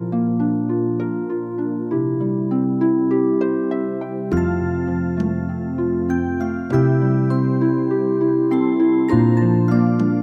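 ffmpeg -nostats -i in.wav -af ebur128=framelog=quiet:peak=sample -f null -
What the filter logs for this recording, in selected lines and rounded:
Integrated loudness:
  I:         -19.3 LUFS
  Threshold: -29.3 LUFS
Loudness range:
  LRA:         4.0 LU
  Threshold: -39.6 LUFS
  LRA low:   -21.2 LUFS
  LRA high:  -17.2 LUFS
Sample peak:
  Peak:       -3.2 dBFS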